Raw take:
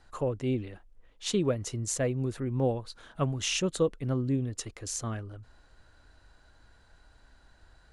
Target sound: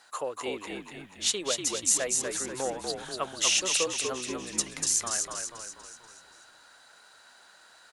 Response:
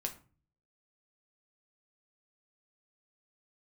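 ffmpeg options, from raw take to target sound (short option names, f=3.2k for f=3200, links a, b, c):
-filter_complex "[0:a]aeval=exprs='val(0)+0.000708*(sin(2*PI*50*n/s)+sin(2*PI*2*50*n/s)/2+sin(2*PI*3*50*n/s)/3+sin(2*PI*4*50*n/s)/4+sin(2*PI*5*50*n/s)/5)':c=same,highpass=680,asplit=2[a][b];[b]acompressor=threshold=-40dB:ratio=6,volume=1.5dB[c];[a][c]amix=inputs=2:normalize=0,aemphasis=mode=production:type=cd,asplit=7[d][e][f][g][h][i][j];[e]adelay=242,afreqshift=-57,volume=-4dB[k];[f]adelay=484,afreqshift=-114,volume=-10dB[l];[g]adelay=726,afreqshift=-171,volume=-16dB[m];[h]adelay=968,afreqshift=-228,volume=-22.1dB[n];[i]adelay=1210,afreqshift=-285,volume=-28.1dB[o];[j]adelay=1452,afreqshift=-342,volume=-34.1dB[p];[d][k][l][m][n][o][p]amix=inputs=7:normalize=0"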